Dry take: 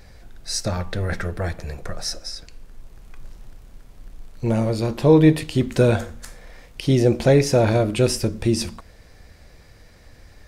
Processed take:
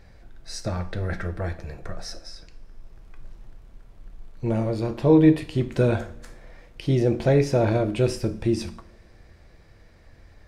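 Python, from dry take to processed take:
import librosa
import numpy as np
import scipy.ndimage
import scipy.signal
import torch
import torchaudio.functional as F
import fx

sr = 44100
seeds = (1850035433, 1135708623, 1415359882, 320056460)

y = fx.high_shelf(x, sr, hz=4500.0, db=-11.0)
y = fx.rev_double_slope(y, sr, seeds[0], early_s=0.41, late_s=3.1, knee_db=-27, drr_db=9.0)
y = F.gain(torch.from_numpy(y), -4.0).numpy()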